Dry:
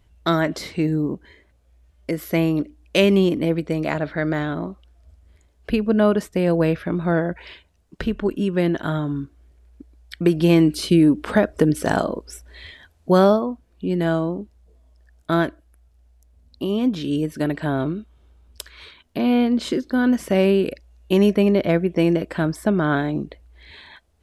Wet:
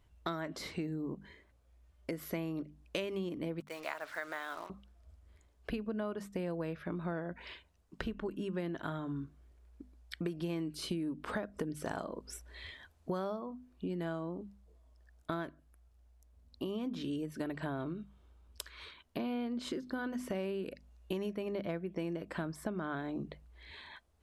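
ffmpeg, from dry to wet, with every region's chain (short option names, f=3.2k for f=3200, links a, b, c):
-filter_complex "[0:a]asettb=1/sr,asplit=3[a][b][c];[a]atrim=end=3.604[d];[b]atrim=start=3.6:end=4.7,asetpts=PTS-STARTPTS,afade=t=in:d=0.004:c=qsin,afade=t=out:st=1.096:d=0.004:c=qsin,highpass=830,acrusher=bits=6:mix=0:aa=0.5[e];[c]atrim=start=4.696[f];[d][e]acrossfade=d=0.004:c1=hsin:c2=qsin[g];[g][f]acrossfade=d=0.004:c1=qsin:c2=hsin,equalizer=f=1.1k:w=2:g=4,bandreject=f=50:t=h:w=6,bandreject=f=100:t=h:w=6,bandreject=f=150:t=h:w=6,bandreject=f=200:t=h:w=6,bandreject=f=250:t=h:w=6,acompressor=threshold=-27dB:ratio=6,volume=-8dB"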